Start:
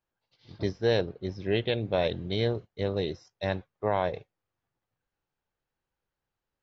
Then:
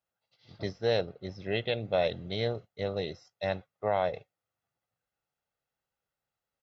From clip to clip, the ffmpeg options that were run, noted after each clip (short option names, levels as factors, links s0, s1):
-af "highpass=f=170:p=1,aecho=1:1:1.5:0.43,volume=0.794"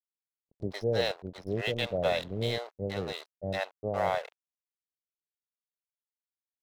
-filter_complex "[0:a]aeval=exprs='sgn(val(0))*max(abs(val(0))-0.00668,0)':c=same,acrossover=split=560[s0][s1];[s1]adelay=110[s2];[s0][s2]amix=inputs=2:normalize=0,volume=1.41"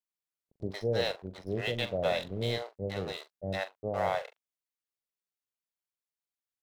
-filter_complex "[0:a]asplit=2[s0][s1];[s1]adelay=42,volume=0.237[s2];[s0][s2]amix=inputs=2:normalize=0,volume=0.841"